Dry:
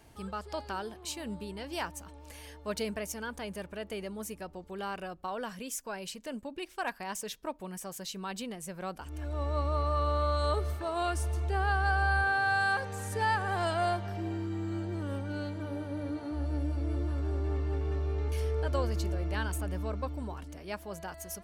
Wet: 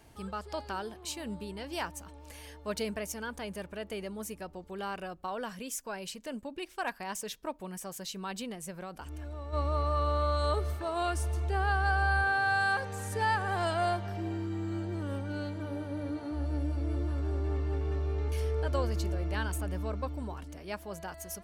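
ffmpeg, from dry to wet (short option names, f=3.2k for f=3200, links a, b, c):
-filter_complex "[0:a]asplit=3[a][b][c];[a]afade=t=out:st=8.7:d=0.02[d];[b]acompressor=threshold=-37dB:ratio=6:attack=3.2:release=140:knee=1:detection=peak,afade=t=in:st=8.7:d=0.02,afade=t=out:st=9.52:d=0.02[e];[c]afade=t=in:st=9.52:d=0.02[f];[d][e][f]amix=inputs=3:normalize=0"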